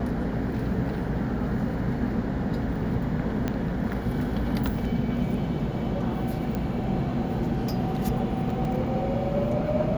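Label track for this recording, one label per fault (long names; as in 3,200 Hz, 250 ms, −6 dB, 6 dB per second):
3.480000	3.480000	click −14 dBFS
6.550000	6.550000	click −18 dBFS
8.650000	8.650000	drop-out 2.5 ms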